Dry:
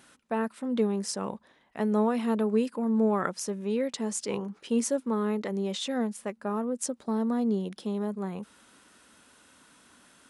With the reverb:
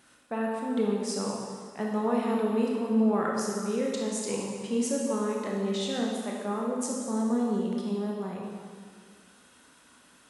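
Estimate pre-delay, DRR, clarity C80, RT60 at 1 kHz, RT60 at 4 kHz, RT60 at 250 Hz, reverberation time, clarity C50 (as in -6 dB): 24 ms, -2.0 dB, 2.0 dB, 2.0 s, 1.8 s, 1.8 s, 1.9 s, 0.0 dB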